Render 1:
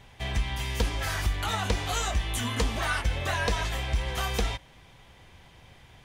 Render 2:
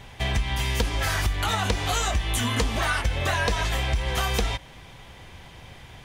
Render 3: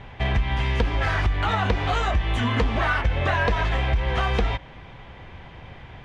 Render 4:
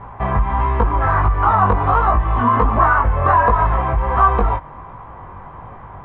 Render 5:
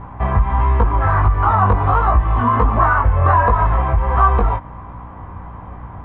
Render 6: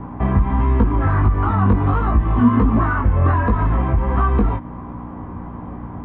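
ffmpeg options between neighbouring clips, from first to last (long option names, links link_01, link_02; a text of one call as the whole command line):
ffmpeg -i in.wav -af "acompressor=threshold=-30dB:ratio=3,volume=8dB" out.wav
ffmpeg -i in.wav -filter_complex "[0:a]lowpass=2400,asplit=2[link_01][link_02];[link_02]volume=23.5dB,asoftclip=hard,volume=-23.5dB,volume=-11.5dB[link_03];[link_01][link_03]amix=inputs=2:normalize=0,volume=1.5dB" out.wav
ffmpeg -i in.wav -af "lowpass=frequency=1100:width_type=q:width=4.9,flanger=delay=18:depth=3.2:speed=1.4,volume=6.5dB" out.wav
ffmpeg -i in.wav -af "equalizer=frequency=78:width=2:gain=9,aeval=exprs='val(0)+0.02*(sin(2*PI*60*n/s)+sin(2*PI*2*60*n/s)/2+sin(2*PI*3*60*n/s)/3+sin(2*PI*4*60*n/s)/4+sin(2*PI*5*60*n/s)/5)':channel_layout=same,volume=-1dB" out.wav
ffmpeg -i in.wav -filter_complex "[0:a]equalizer=frequency=260:width_type=o:width=1.5:gain=14.5,acrossover=split=350|1400[link_01][link_02][link_03];[link_02]acompressor=threshold=-25dB:ratio=6[link_04];[link_01][link_04][link_03]amix=inputs=3:normalize=0,volume=-3dB" out.wav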